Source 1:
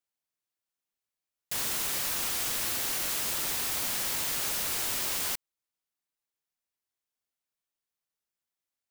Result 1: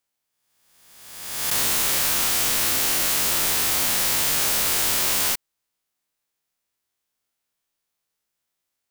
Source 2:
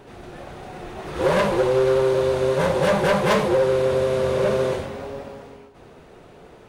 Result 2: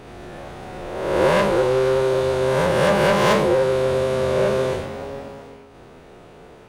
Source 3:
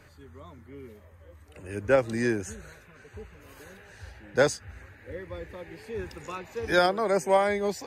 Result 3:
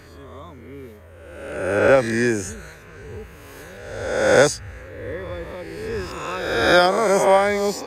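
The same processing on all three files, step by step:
reverse spectral sustain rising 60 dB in 1.26 s; normalise loudness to -19 LUFS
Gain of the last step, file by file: +6.5 dB, -1.0 dB, +5.0 dB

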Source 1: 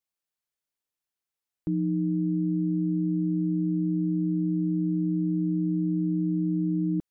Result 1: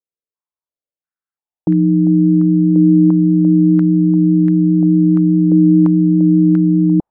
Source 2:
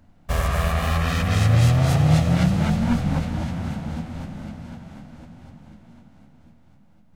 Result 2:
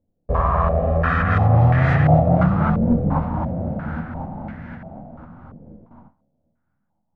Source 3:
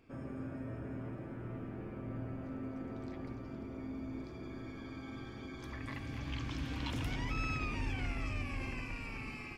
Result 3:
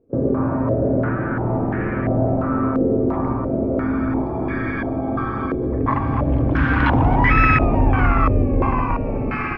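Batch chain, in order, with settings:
gate with hold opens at -38 dBFS; vibrato 4.9 Hz 7.9 cents; step-sequenced low-pass 2.9 Hz 480–1800 Hz; peak normalisation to -3 dBFS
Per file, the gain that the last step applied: +14.0 dB, +1.5 dB, +21.0 dB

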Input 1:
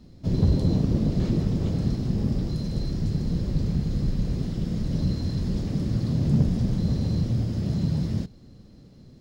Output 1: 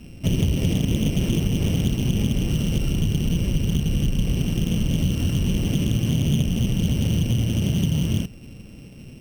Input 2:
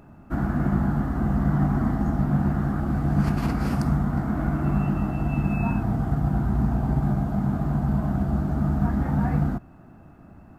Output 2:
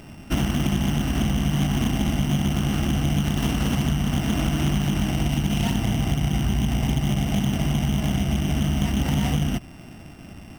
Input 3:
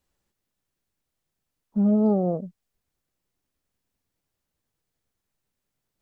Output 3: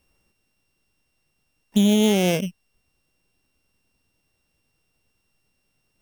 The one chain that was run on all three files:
sorted samples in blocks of 16 samples; compression 6:1, threshold -25 dBFS; loudspeaker Doppler distortion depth 0.25 ms; peak normalisation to -9 dBFS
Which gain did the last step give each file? +8.0 dB, +6.5 dB, +10.0 dB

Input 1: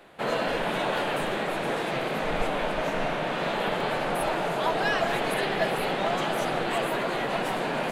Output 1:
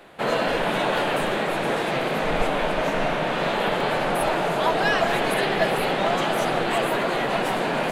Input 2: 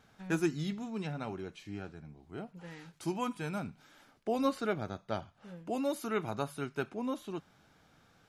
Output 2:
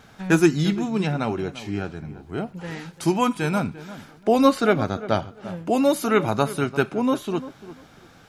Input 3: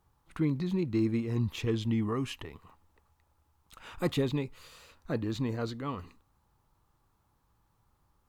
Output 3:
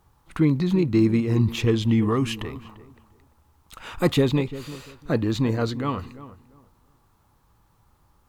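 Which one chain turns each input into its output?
filtered feedback delay 345 ms, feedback 23%, low-pass 1.5 kHz, level -15 dB; normalise loudness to -23 LUFS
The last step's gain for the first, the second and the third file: +4.5 dB, +14.0 dB, +9.5 dB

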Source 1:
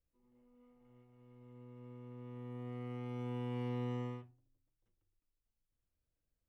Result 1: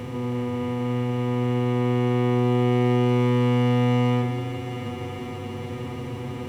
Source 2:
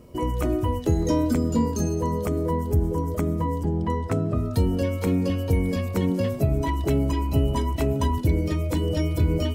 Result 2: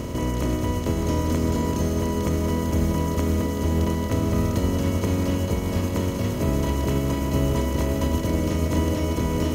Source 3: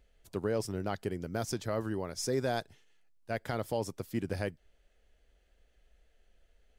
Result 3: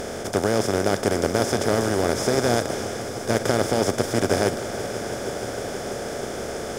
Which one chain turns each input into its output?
spectral levelling over time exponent 0.2; echo with a slow build-up 160 ms, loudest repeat 5, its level -16.5 dB; upward expansion 1.5:1, over -31 dBFS; normalise loudness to -24 LUFS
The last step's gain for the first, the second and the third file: +18.5 dB, -7.0 dB, +5.5 dB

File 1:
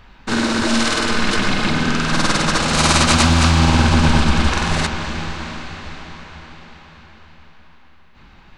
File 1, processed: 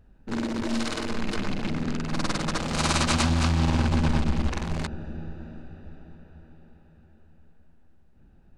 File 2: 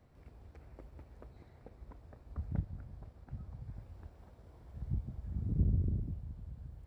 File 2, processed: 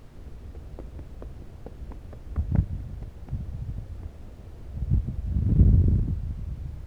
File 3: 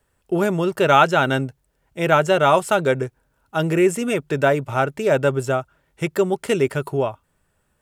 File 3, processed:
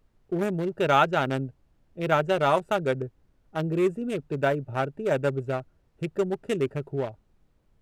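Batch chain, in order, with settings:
local Wiener filter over 41 samples; added noise brown -57 dBFS; normalise loudness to -27 LUFS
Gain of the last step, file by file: -8.5 dB, +12.5 dB, -6.0 dB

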